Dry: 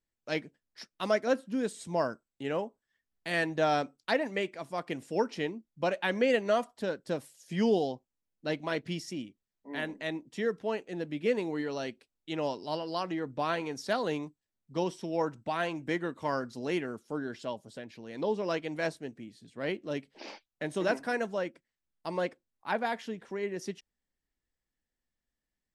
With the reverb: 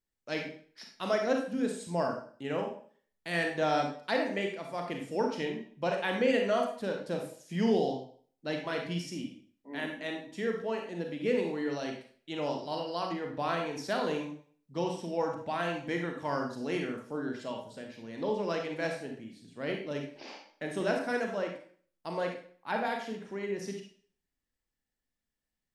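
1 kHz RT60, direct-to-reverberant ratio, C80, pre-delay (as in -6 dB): 0.50 s, 2.0 dB, 9.5 dB, 29 ms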